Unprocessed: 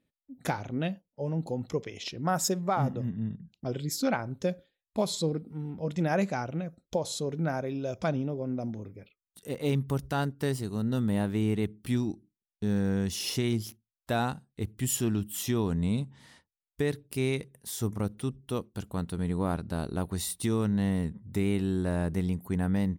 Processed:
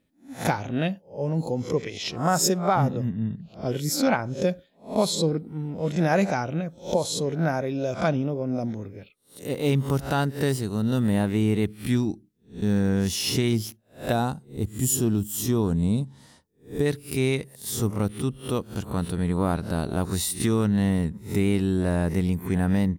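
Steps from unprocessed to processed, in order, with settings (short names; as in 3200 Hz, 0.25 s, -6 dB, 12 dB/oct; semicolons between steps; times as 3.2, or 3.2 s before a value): spectral swells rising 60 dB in 0.32 s; 14.12–16.86 bell 2200 Hz -10 dB 1.5 oct; gain +5 dB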